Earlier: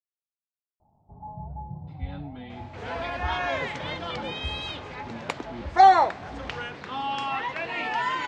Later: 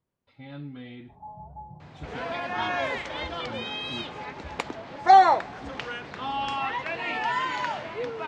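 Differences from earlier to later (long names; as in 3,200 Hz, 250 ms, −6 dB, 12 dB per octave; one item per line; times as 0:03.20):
speech: entry −1.60 s
first sound: add low-shelf EQ 360 Hz −10.5 dB
second sound: entry −0.70 s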